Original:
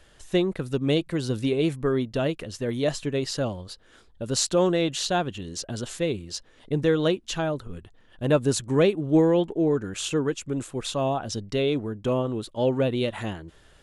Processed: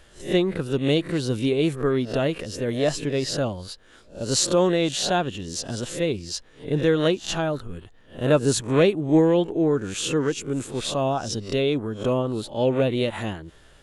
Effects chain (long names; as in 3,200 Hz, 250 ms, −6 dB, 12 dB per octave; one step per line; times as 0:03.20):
peak hold with a rise ahead of every peak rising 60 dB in 0.31 s
level +1.5 dB